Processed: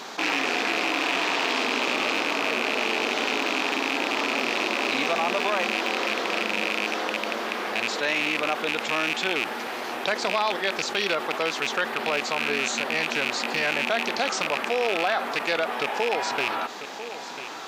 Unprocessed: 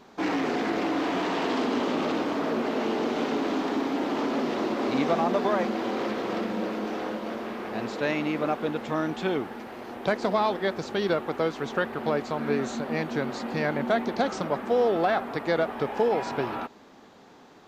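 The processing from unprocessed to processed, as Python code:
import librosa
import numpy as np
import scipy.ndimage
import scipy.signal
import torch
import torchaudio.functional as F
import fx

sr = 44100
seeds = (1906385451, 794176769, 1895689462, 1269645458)

y = fx.rattle_buzz(x, sr, strikes_db=-35.0, level_db=-20.0)
y = fx.highpass(y, sr, hz=910.0, slope=6)
y = fx.peak_eq(y, sr, hz=6100.0, db=5.0, octaves=2.5)
y = y + 10.0 ** (-22.0 / 20.0) * np.pad(y, (int(995 * sr / 1000.0), 0))[:len(y)]
y = fx.env_flatten(y, sr, amount_pct=50)
y = y * librosa.db_to_amplitude(1.5)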